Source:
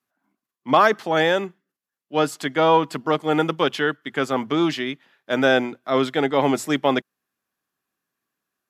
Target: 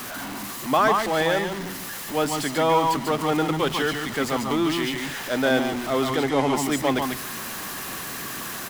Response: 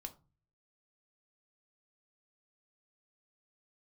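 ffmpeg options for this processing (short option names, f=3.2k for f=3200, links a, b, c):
-filter_complex "[0:a]aeval=exprs='val(0)+0.5*0.075*sgn(val(0))':c=same,asettb=1/sr,asplit=3[a][b][c];[a]atrim=end=6.154[d];[b]atrim=start=6.15:end=6.55,asetpts=PTS-STARTPTS,afade=t=in:d=0.004:c=qsin,afade=t=out:st=0.396:d=0.004:c=qsin,lowpass=10k[e];[c]atrim=start=6.546[f];[d][e]acrossfade=d=0.004:c1=hsin:c2=qsin[g];[g][f]acrossfade=d=0.004:c1=qsin:c2=hsin,aecho=1:1:143|144:0.376|0.596,volume=-5.5dB"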